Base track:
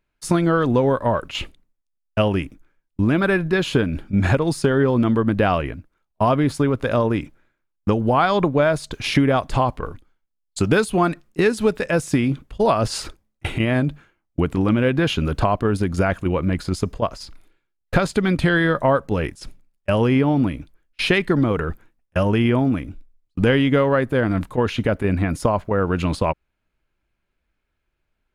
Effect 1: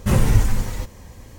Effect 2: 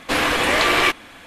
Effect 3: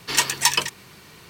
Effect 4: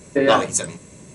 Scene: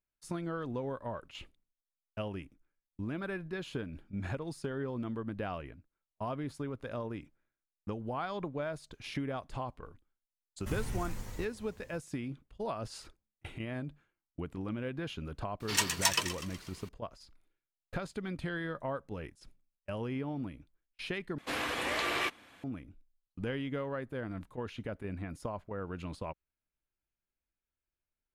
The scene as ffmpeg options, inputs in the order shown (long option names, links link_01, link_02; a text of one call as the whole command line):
ffmpeg -i bed.wav -i cue0.wav -i cue1.wav -i cue2.wav -filter_complex "[0:a]volume=-19.5dB[link_01];[1:a]acrossover=split=150|900|2100|4800[link_02][link_03][link_04][link_05][link_06];[link_02]acompressor=threshold=-21dB:ratio=3[link_07];[link_03]acompressor=threshold=-33dB:ratio=3[link_08];[link_04]acompressor=threshold=-39dB:ratio=3[link_09];[link_05]acompressor=threshold=-43dB:ratio=3[link_10];[link_06]acompressor=threshold=-37dB:ratio=3[link_11];[link_07][link_08][link_09][link_10][link_11]amix=inputs=5:normalize=0[link_12];[3:a]asplit=7[link_13][link_14][link_15][link_16][link_17][link_18][link_19];[link_14]adelay=123,afreqshift=46,volume=-13dB[link_20];[link_15]adelay=246,afreqshift=92,volume=-18.4dB[link_21];[link_16]adelay=369,afreqshift=138,volume=-23.7dB[link_22];[link_17]adelay=492,afreqshift=184,volume=-29.1dB[link_23];[link_18]adelay=615,afreqshift=230,volume=-34.4dB[link_24];[link_19]adelay=738,afreqshift=276,volume=-39.8dB[link_25];[link_13][link_20][link_21][link_22][link_23][link_24][link_25]amix=inputs=7:normalize=0[link_26];[2:a]highpass=51[link_27];[link_01]asplit=2[link_28][link_29];[link_28]atrim=end=21.384[link_30];[link_27]atrim=end=1.26,asetpts=PTS-STARTPTS,volume=-15.5dB[link_31];[link_29]atrim=start=22.636[link_32];[link_12]atrim=end=1.38,asetpts=PTS-STARTPTS,volume=-14.5dB,afade=type=in:duration=0.004:curve=hsin,afade=type=out:start_time=1.376:duration=0.004:curve=hsin,adelay=10600[link_33];[link_26]atrim=end=1.29,asetpts=PTS-STARTPTS,volume=-9.5dB,afade=type=in:duration=0.004:curve=hsin,afade=type=out:start_time=1.286:duration=0.004:curve=hsin,adelay=15600[link_34];[link_30][link_31]acrossfade=duration=0.004:curve1=hsin:curve2=hsin[link_35];[link_35][link_32]acrossfade=duration=0.004:curve1=hsin:curve2=hsin[link_36];[link_36][link_33][link_34]amix=inputs=3:normalize=0" out.wav